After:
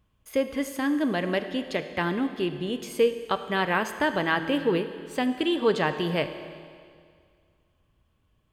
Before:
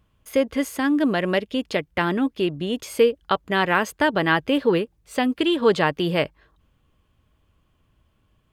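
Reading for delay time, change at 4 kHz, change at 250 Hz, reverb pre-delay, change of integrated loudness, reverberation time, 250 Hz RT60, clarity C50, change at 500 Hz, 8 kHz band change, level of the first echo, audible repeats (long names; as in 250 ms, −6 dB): no echo audible, −4.5 dB, −4.5 dB, 25 ms, −4.5 dB, 2.1 s, 2.1 s, 10.0 dB, −4.5 dB, −4.5 dB, no echo audible, no echo audible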